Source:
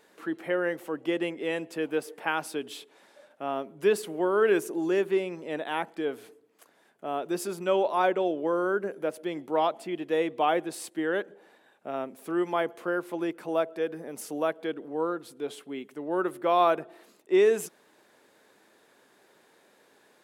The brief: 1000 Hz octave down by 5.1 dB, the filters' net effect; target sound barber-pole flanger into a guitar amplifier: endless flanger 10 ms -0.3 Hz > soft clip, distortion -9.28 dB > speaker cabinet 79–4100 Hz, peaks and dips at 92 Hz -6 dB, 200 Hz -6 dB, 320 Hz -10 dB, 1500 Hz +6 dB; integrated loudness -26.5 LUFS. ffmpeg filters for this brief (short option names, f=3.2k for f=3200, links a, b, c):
-filter_complex "[0:a]equalizer=f=1k:t=o:g=-8.5,asplit=2[a][b];[b]adelay=10,afreqshift=-0.3[c];[a][c]amix=inputs=2:normalize=1,asoftclip=threshold=-29dB,highpass=79,equalizer=f=92:t=q:w=4:g=-6,equalizer=f=200:t=q:w=4:g=-6,equalizer=f=320:t=q:w=4:g=-10,equalizer=f=1.5k:t=q:w=4:g=6,lowpass=f=4.1k:w=0.5412,lowpass=f=4.1k:w=1.3066,volume=13dB"